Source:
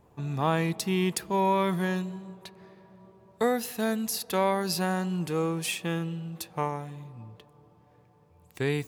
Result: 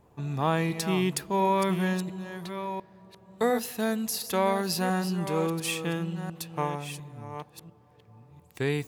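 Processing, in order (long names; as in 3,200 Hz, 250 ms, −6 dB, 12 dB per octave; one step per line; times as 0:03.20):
delay that plays each chunk backwards 700 ms, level −9.5 dB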